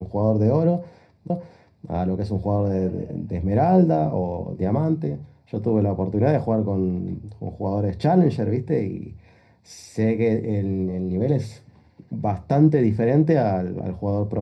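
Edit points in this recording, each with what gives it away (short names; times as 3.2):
1.3 repeat of the last 0.58 s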